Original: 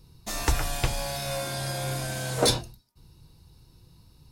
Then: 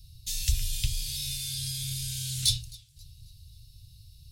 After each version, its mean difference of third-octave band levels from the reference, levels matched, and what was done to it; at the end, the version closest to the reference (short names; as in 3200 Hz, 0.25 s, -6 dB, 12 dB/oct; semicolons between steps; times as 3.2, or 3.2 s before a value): 13.5 dB: elliptic band-stop 110–3200 Hz, stop band 80 dB; in parallel at +2 dB: compressor, threshold -39 dBFS, peak gain reduction 18.5 dB; on the sum: warbling echo 0.267 s, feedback 41%, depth 158 cents, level -23.5 dB; gain -1.5 dB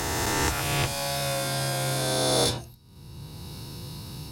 8.0 dB: spectral swells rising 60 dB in 1.69 s; HPF 76 Hz 12 dB/oct; three-band squash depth 70%; gain -1 dB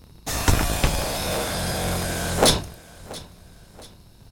4.5 dB: cycle switcher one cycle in 3, inverted; notch 4600 Hz, Q 25; feedback echo 0.681 s, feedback 40%, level -20 dB; gain +5.5 dB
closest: third